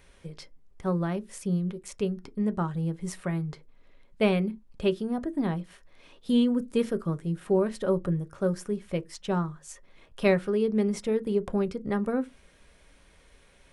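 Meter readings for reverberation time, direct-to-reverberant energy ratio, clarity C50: no single decay rate, 9.5 dB, 29.5 dB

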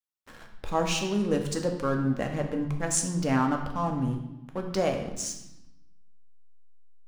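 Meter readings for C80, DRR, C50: 9.0 dB, 3.0 dB, 7.0 dB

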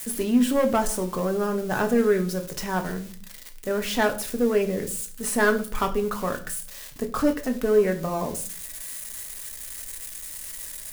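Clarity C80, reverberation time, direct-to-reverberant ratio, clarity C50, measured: 18.0 dB, 0.45 s, 4.5 dB, 14.0 dB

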